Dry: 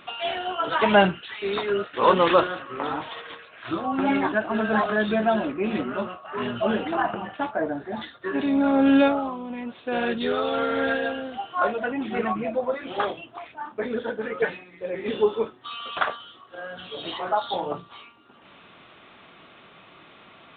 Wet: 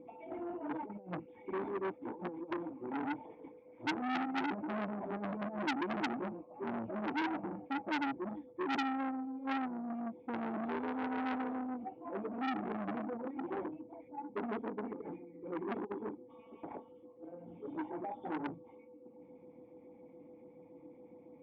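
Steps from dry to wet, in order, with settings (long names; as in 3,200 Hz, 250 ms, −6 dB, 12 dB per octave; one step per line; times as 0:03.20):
high-pass filter 50 Hz 6 dB per octave
high shelf with overshoot 1,900 Hz +6 dB, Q 3
compressor whose output falls as the input rises −24 dBFS, ratio −0.5
steady tone 520 Hz −41 dBFS
wrong playback speed 25 fps video run at 24 fps
auto-filter notch sine 7.1 Hz 370–2,600 Hz
formant resonators in series u
saturating transformer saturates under 2,400 Hz
level +3.5 dB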